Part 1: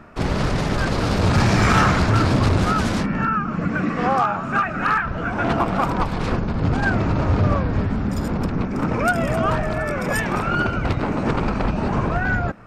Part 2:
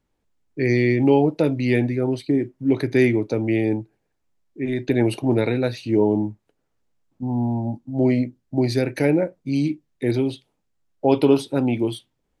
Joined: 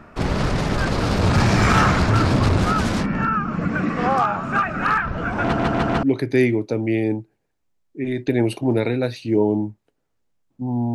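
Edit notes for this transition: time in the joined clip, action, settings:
part 1
0:05.43: stutter in place 0.15 s, 4 plays
0:06.03: continue with part 2 from 0:02.64

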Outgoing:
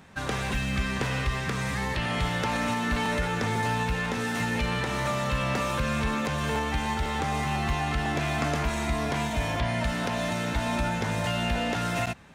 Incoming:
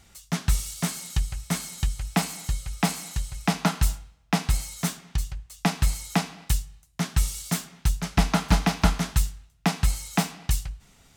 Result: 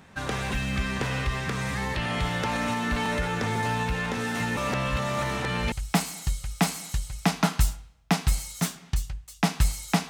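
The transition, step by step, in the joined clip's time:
outgoing
0:04.57–0:05.72: reverse
0:05.72: continue with incoming from 0:01.94

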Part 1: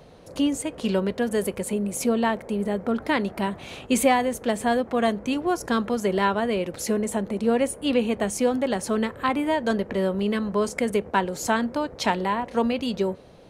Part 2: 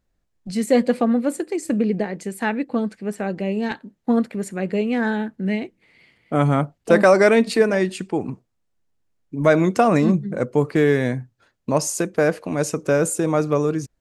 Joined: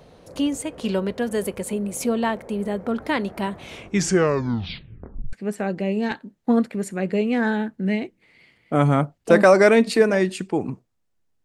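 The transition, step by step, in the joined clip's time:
part 1
0:03.60: tape stop 1.73 s
0:05.33: continue with part 2 from 0:02.93

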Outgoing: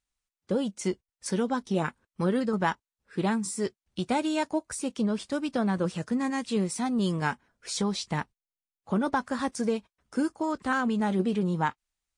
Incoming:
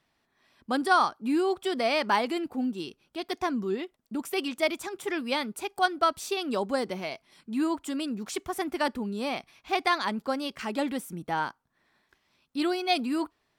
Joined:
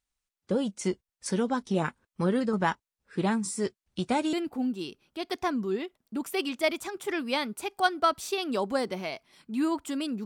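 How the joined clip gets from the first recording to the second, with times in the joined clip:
outgoing
0:04.33: continue with incoming from 0:02.32

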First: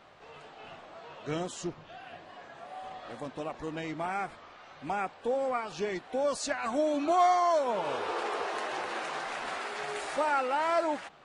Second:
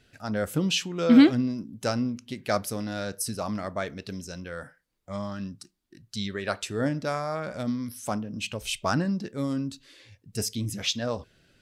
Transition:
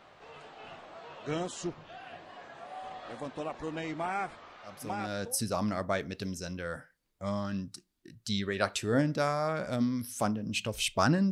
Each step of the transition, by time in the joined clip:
first
0:05.02: continue with second from 0:02.89, crossfade 0.80 s linear

